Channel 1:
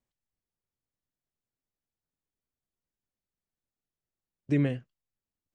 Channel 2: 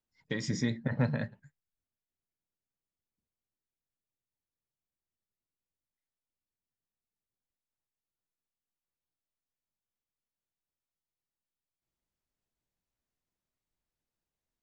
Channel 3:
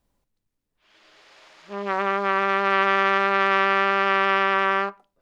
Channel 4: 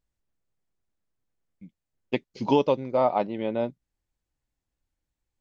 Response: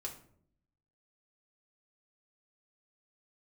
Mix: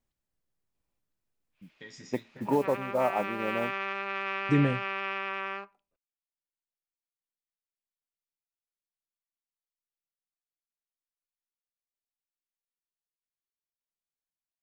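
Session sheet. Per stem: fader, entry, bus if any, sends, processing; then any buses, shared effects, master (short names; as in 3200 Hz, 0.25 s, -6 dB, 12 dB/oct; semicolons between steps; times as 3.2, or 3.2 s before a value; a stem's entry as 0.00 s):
+1.5 dB, 0.00 s, no send, dry
-1.0 dB, 1.50 s, no send, low shelf 480 Hz -10 dB; random-step tremolo 3.5 Hz; resonator 86 Hz, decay 0.32 s, harmonics all, mix 80%
-15.0 dB, 0.75 s, no send, bell 2500 Hz +10.5 dB 0.31 oct
-5.0 dB, 0.00 s, no send, steep low-pass 2100 Hz; modulation noise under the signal 28 dB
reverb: off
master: dry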